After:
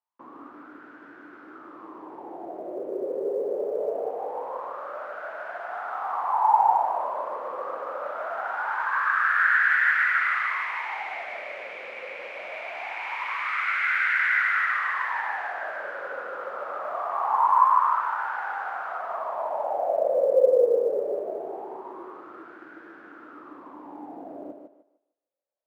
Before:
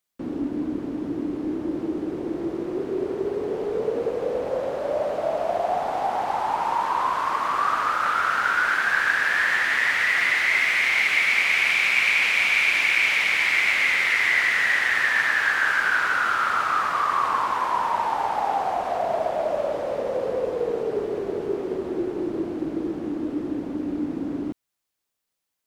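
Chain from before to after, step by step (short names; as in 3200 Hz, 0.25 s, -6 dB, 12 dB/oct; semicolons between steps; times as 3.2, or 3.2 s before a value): wah 0.23 Hz 520–1500 Hz, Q 8.2; thinning echo 0.151 s, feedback 30%, high-pass 240 Hz, level -5 dB; short-mantissa float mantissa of 6-bit; gain +9 dB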